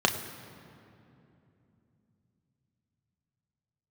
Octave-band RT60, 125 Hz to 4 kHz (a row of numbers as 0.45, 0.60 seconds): 5.1, 4.5, 3.1, 2.6, 2.3, 1.7 seconds